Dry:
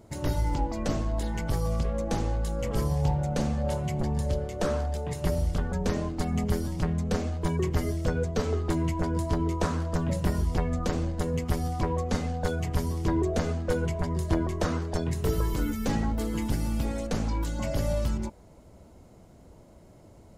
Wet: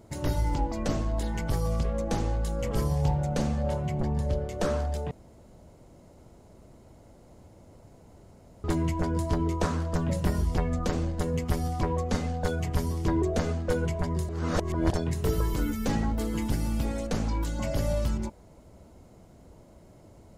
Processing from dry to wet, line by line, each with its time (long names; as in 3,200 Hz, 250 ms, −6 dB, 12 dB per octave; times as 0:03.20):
0:03.68–0:04.49: high-shelf EQ 4,000 Hz −9 dB
0:05.11–0:08.64: fill with room tone
0:14.29–0:14.92: reverse